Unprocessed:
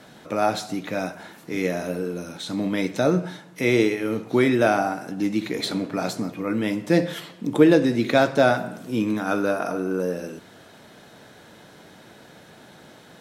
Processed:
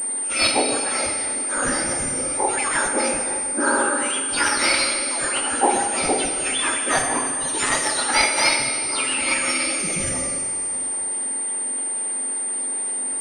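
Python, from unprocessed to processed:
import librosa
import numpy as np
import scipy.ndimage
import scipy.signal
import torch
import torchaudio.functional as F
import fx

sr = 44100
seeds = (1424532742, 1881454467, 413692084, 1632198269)

p1 = fx.octave_mirror(x, sr, pivot_hz=1800.0)
p2 = fx.tilt_eq(p1, sr, slope=-3.0, at=(2.88, 3.98))
p3 = fx.rider(p2, sr, range_db=3, speed_s=2.0)
p4 = p2 + (p3 * librosa.db_to_amplitude(-1.5))
p5 = fx.wow_flutter(p4, sr, seeds[0], rate_hz=2.1, depth_cents=18.0)
p6 = fx.rev_plate(p5, sr, seeds[1], rt60_s=2.3, hf_ratio=1.0, predelay_ms=0, drr_db=3.0)
p7 = fx.pwm(p6, sr, carrier_hz=8900.0)
y = p7 * librosa.db_to_amplitude(2.5)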